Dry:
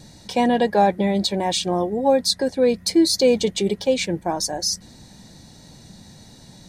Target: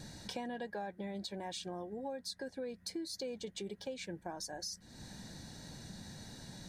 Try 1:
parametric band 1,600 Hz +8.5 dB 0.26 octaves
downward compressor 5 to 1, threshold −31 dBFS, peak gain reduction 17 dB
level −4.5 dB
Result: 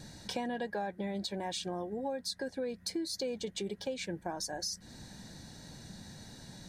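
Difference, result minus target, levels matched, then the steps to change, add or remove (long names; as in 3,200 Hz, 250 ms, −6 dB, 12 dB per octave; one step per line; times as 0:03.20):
downward compressor: peak gain reduction −5 dB
change: downward compressor 5 to 1, threshold −37.5 dBFS, peak gain reduction 22.5 dB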